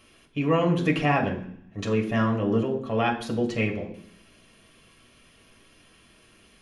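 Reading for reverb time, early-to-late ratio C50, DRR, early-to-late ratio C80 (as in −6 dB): 0.65 s, 10.0 dB, −1.0 dB, 13.0 dB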